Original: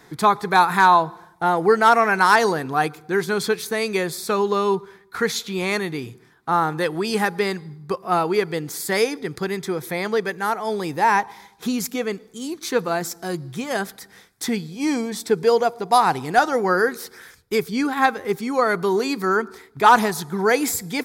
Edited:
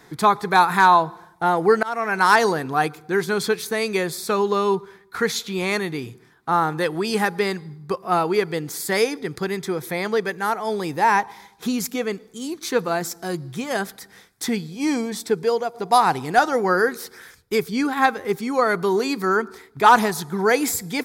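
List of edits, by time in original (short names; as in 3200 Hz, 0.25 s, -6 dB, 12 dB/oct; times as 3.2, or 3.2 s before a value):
1.83–2.29 fade in, from -23.5 dB
15.13–15.74 fade out, to -7.5 dB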